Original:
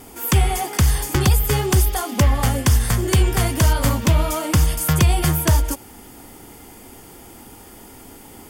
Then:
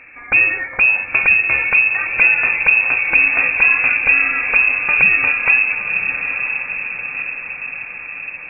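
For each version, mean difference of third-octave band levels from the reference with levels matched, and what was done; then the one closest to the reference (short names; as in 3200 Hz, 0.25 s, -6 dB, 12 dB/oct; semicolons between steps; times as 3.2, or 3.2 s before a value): 18.5 dB: diffused feedback echo 0.989 s, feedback 58%, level -7 dB; inverted band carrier 2600 Hz; gain +1 dB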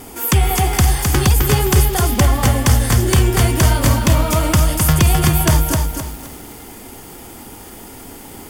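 3.0 dB: in parallel at -0.5 dB: compressor, threshold -24 dBFS, peak gain reduction 12.5 dB; on the sum: lo-fi delay 0.26 s, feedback 35%, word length 6-bit, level -4 dB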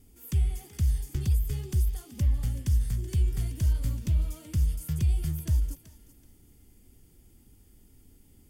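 8.5 dB: passive tone stack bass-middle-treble 10-0-1; on a send: thinning echo 0.379 s, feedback 27%, high-pass 420 Hz, level -14 dB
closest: second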